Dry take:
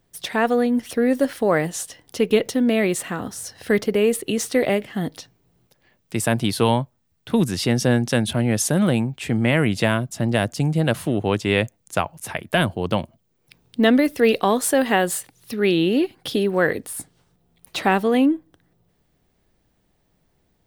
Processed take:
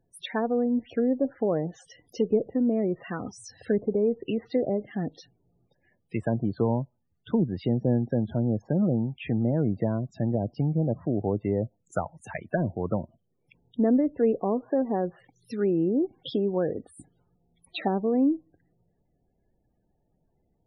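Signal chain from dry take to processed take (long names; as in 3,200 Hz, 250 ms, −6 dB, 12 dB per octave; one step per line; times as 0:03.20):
treble cut that deepens with the level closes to 610 Hz, closed at −16 dBFS
spectral peaks only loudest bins 32
level −5 dB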